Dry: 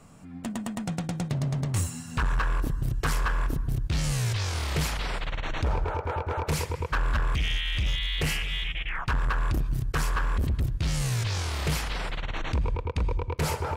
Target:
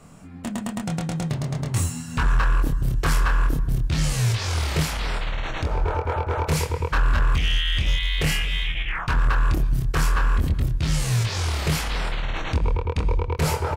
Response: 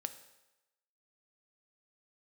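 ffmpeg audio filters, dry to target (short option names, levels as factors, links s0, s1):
-filter_complex "[0:a]asettb=1/sr,asplit=3[s0][s1][s2];[s0]atrim=end=4.824[s3];[s1]atrim=start=4.82:end=5.79,asetpts=PTS-STARTPTS,afade=t=in:d=0.004:c=qsin,afade=t=out:st=0.966:d=0.004:c=qsin,acompressor=threshold=0.0501:ratio=6[s4];[s2]atrim=start=5.786[s5];[s3][s4]acrossfade=d=0.004:c1=hsin:c2=qsin[s6];[s6][s5]acrossfade=d=0.004:c1=qsin:c2=hsin,asplit=2[s7][s8];[s8]adelay=25,volume=0.631[s9];[s7][s9]amix=inputs=2:normalize=0,volume=1.41"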